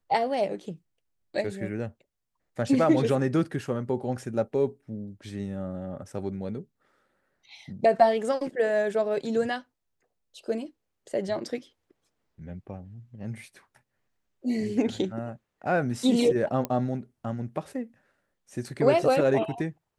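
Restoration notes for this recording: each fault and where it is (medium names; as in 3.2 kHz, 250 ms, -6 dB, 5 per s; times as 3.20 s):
16.65 s: pop -15 dBFS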